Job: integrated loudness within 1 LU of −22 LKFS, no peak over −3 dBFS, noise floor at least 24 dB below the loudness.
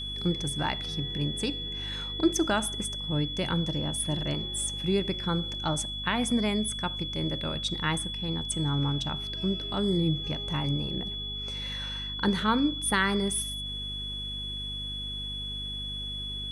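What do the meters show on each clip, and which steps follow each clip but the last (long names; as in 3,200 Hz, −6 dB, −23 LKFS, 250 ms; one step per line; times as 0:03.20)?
mains hum 50 Hz; hum harmonics up to 250 Hz; level of the hum −38 dBFS; interfering tone 3,400 Hz; level of the tone −34 dBFS; integrated loudness −29.5 LKFS; sample peak −12.5 dBFS; target loudness −22.0 LKFS
→ hum removal 50 Hz, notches 5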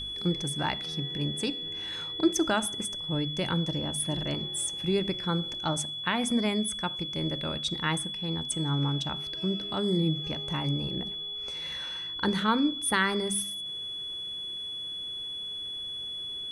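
mains hum none found; interfering tone 3,400 Hz; level of the tone −34 dBFS
→ notch filter 3,400 Hz, Q 30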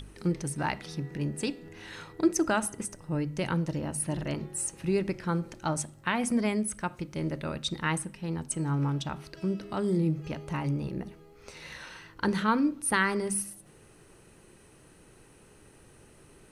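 interfering tone none found; integrated loudness −30.5 LKFS; sample peak −13.0 dBFS; target loudness −22.0 LKFS
→ level +8.5 dB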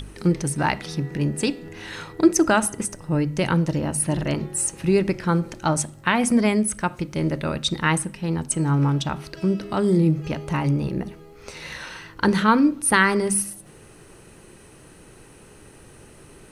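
integrated loudness −22.0 LKFS; sample peak −4.5 dBFS; background noise floor −48 dBFS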